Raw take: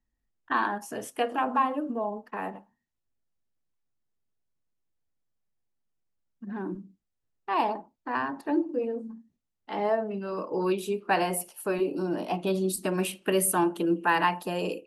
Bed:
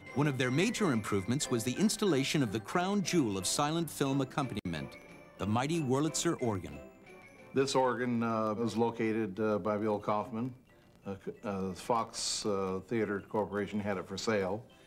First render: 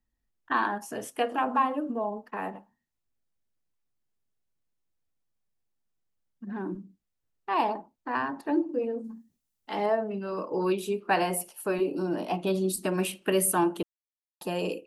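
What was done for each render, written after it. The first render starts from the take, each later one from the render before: 9.04–9.86 high shelf 4500 Hz +11.5 dB; 13.83–14.41 mute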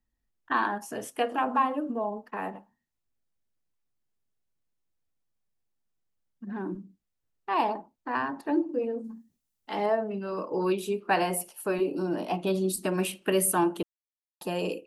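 nothing audible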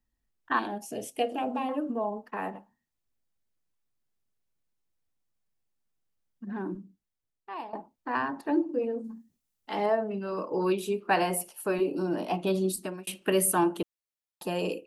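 0.59–1.69 band shelf 1300 Hz -14.5 dB 1.2 oct; 6.6–7.73 fade out, to -18 dB; 12.66–13.07 fade out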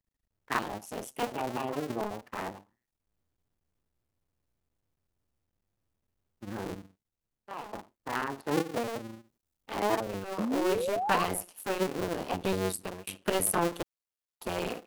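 cycle switcher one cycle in 2, muted; 10.39–11.24 painted sound rise 200–1200 Hz -31 dBFS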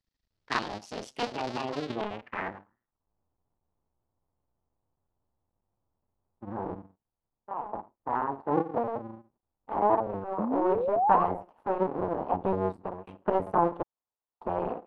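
low-pass sweep 4700 Hz -> 920 Hz, 1.74–3.08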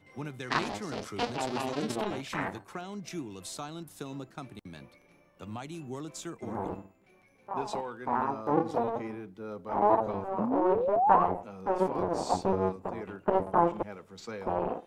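add bed -9 dB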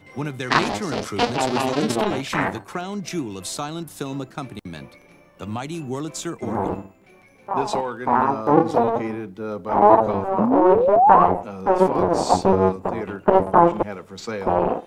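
gain +11 dB; limiter -1 dBFS, peak gain reduction 3 dB

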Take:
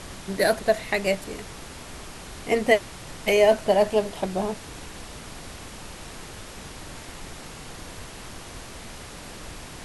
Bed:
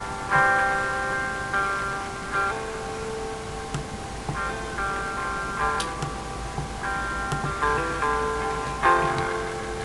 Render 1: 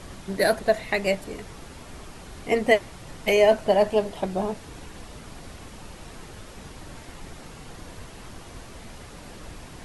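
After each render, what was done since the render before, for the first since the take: denoiser 6 dB, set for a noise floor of -41 dBFS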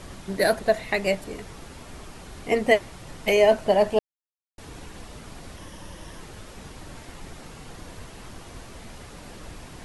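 3.99–4.58 mute; 5.57–6.2 ripple EQ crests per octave 1.2, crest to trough 7 dB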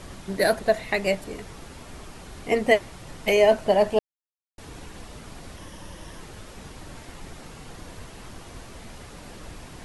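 nothing audible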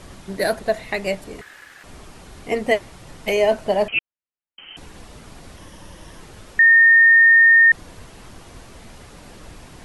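1.41–1.84 ring modulator 1700 Hz; 3.88–4.77 inverted band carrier 3100 Hz; 6.59–7.72 bleep 1830 Hz -8 dBFS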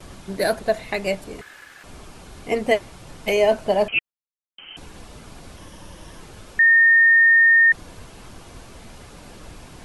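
notch 1900 Hz, Q 16; gate with hold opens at -35 dBFS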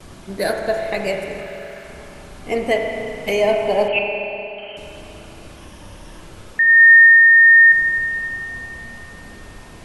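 spring tank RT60 3.1 s, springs 30/39 ms, chirp 60 ms, DRR 1.5 dB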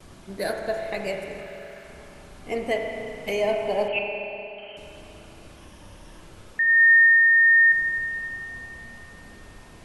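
gain -7 dB

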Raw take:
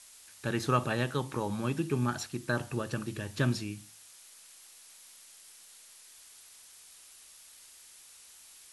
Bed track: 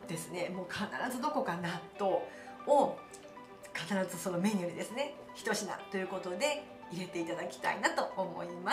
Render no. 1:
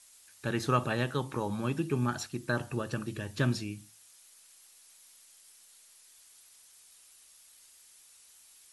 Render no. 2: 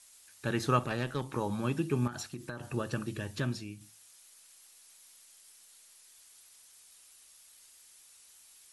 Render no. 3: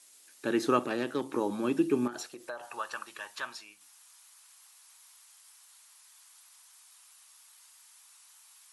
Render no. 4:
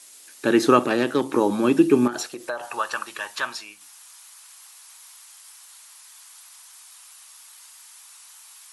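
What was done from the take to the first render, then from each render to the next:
denoiser 6 dB, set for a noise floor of -55 dBFS
0.79–1.33 tube stage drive 26 dB, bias 0.55; 2.07–2.74 compressor 10:1, threshold -35 dBFS; 3.4–3.81 gain -5 dB
high-pass sweep 300 Hz -> 970 Hz, 2.04–2.82
gain +10.5 dB; limiter -3 dBFS, peak gain reduction 1.5 dB

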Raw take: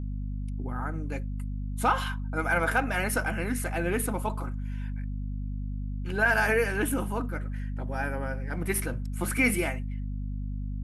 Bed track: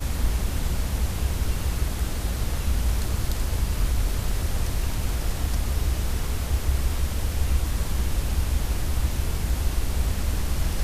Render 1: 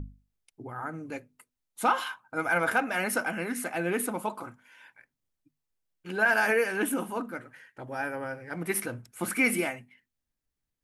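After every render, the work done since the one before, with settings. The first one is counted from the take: notches 50/100/150/200/250 Hz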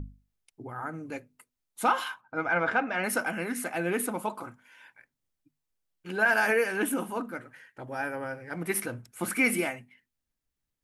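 2.21–3.04 Gaussian blur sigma 1.8 samples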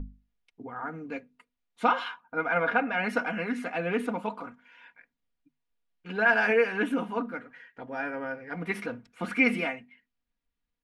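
Chebyshev low-pass 3100 Hz, order 2; comb 4.2 ms, depth 63%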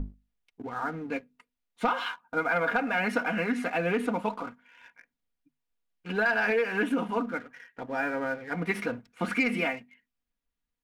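sample leveller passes 1; compressor 5:1, threshold -23 dBFS, peak gain reduction 7.5 dB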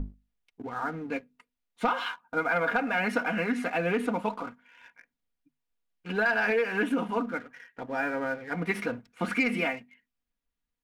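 nothing audible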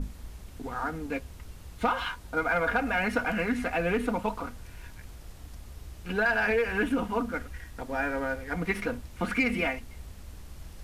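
add bed track -19.5 dB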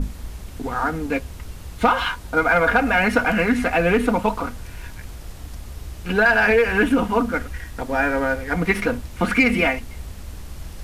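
gain +9.5 dB

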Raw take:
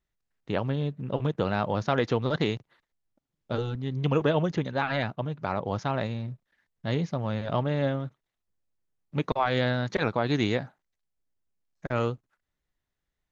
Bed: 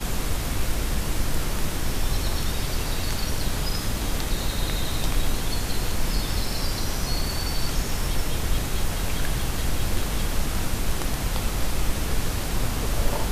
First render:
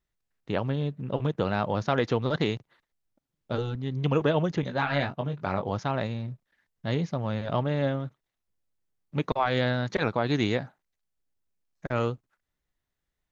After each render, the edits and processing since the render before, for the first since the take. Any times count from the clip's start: 4.61–5.7 doubler 21 ms -6 dB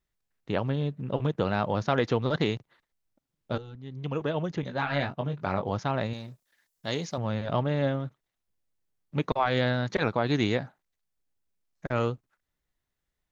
3.58–5.3 fade in, from -14 dB; 6.13–7.18 tone controls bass -9 dB, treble +13 dB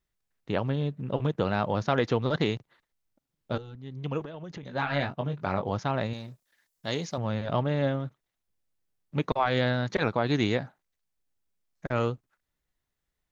4.23–4.74 compressor 12:1, threshold -36 dBFS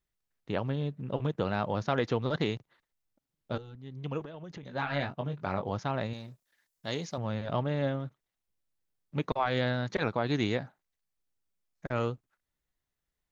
gain -3.5 dB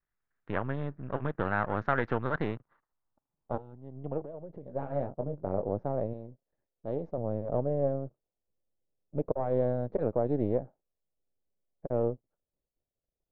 half-wave gain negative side -12 dB; low-pass sweep 1600 Hz -> 550 Hz, 2.18–4.52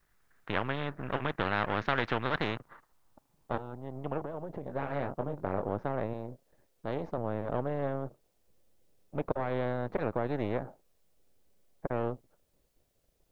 spectral compressor 2:1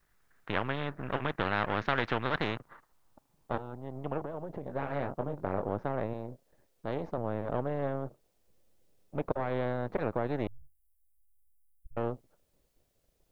10.47–11.97 inverse Chebyshev band-stop 330–2200 Hz, stop band 80 dB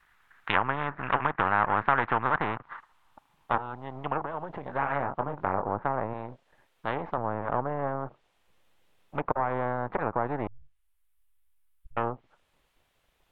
treble ducked by the level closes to 1100 Hz, closed at -28 dBFS; band shelf 1700 Hz +12.5 dB 2.5 oct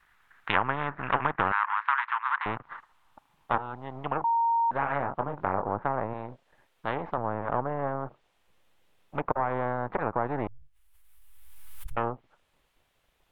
1.52–2.46 elliptic high-pass 980 Hz, stop band 60 dB; 4.24–4.71 bleep 926 Hz -21.5 dBFS; 10.35–11.98 backwards sustainer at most 27 dB/s

